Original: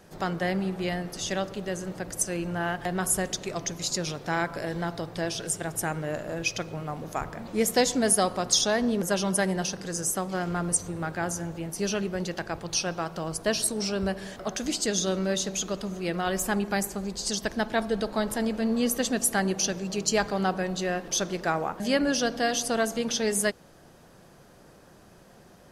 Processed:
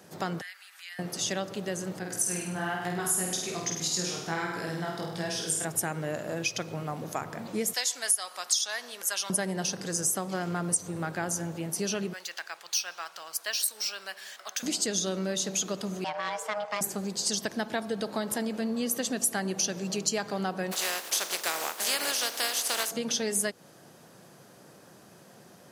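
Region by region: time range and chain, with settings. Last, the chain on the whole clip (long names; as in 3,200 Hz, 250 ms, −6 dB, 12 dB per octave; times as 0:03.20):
0:00.41–0:00.99: spectral tilt +3 dB per octave + downward compressor 2.5 to 1, threshold −36 dBFS + four-pole ladder high-pass 1,300 Hz, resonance 40%
0:01.99–0:05.65: notch filter 580 Hz, Q 6.7 + chorus effect 1.2 Hz, delay 16.5 ms, depth 5.6 ms + flutter between parallel walls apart 8.6 metres, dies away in 0.73 s
0:07.73–0:09.30: high-pass filter 1,300 Hz + high-shelf EQ 11,000 Hz +5.5 dB
0:12.13–0:14.63: high-pass filter 1,400 Hz + linearly interpolated sample-rate reduction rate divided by 2×
0:16.04–0:16.81: low-pass filter 4,800 Hz + frequency shifter +420 Hz + tube saturation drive 17 dB, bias 0.7
0:20.71–0:22.90: compressing power law on the bin magnitudes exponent 0.42 + high-pass filter 460 Hz
whole clip: downward compressor 4 to 1, threshold −28 dBFS; high-pass filter 110 Hz 24 dB per octave; high-shelf EQ 4,700 Hz +5.5 dB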